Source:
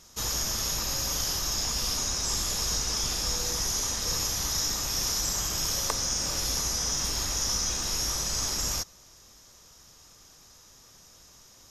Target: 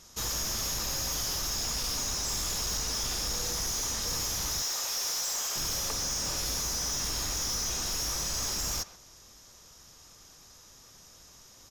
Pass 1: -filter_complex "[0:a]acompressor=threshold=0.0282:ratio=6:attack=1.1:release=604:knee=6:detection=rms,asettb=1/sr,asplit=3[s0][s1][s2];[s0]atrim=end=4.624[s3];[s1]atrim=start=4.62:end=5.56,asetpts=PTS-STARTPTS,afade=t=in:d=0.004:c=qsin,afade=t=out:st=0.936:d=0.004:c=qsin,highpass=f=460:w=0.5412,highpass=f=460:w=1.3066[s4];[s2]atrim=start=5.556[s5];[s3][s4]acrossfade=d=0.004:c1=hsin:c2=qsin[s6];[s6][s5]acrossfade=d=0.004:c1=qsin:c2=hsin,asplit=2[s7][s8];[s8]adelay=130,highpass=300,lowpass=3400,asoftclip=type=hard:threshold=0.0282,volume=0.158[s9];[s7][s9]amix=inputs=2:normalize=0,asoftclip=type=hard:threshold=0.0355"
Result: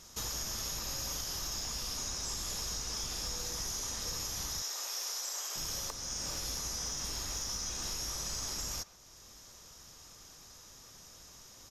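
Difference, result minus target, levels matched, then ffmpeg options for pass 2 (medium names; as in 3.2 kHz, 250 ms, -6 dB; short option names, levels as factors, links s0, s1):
compression: peak gain reduction +14 dB
-filter_complex "[0:a]asettb=1/sr,asplit=3[s0][s1][s2];[s0]atrim=end=4.624[s3];[s1]atrim=start=4.62:end=5.56,asetpts=PTS-STARTPTS,afade=t=in:d=0.004:c=qsin,afade=t=out:st=0.936:d=0.004:c=qsin,highpass=f=460:w=0.5412,highpass=f=460:w=1.3066[s4];[s2]atrim=start=5.556[s5];[s3][s4]acrossfade=d=0.004:c1=hsin:c2=qsin[s6];[s6][s5]acrossfade=d=0.004:c1=qsin:c2=hsin,asplit=2[s7][s8];[s8]adelay=130,highpass=300,lowpass=3400,asoftclip=type=hard:threshold=0.0282,volume=0.158[s9];[s7][s9]amix=inputs=2:normalize=0,asoftclip=type=hard:threshold=0.0355"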